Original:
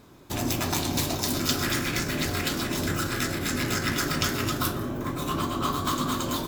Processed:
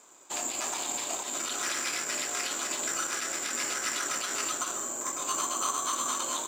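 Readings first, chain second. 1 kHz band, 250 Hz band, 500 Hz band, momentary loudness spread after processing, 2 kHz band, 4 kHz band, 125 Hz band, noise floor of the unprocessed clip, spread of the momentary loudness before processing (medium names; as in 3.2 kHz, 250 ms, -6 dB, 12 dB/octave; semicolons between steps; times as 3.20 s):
-3.0 dB, -16.5 dB, -8.0 dB, 3 LU, -4.5 dB, -5.0 dB, -29.5 dB, -33 dBFS, 4 LU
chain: peaking EQ 1.8 kHz -3.5 dB 0.82 oct; peak limiter -18.5 dBFS, peak gain reduction 10 dB; careless resampling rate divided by 6×, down filtered, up zero stuff; band-pass 680–5000 Hz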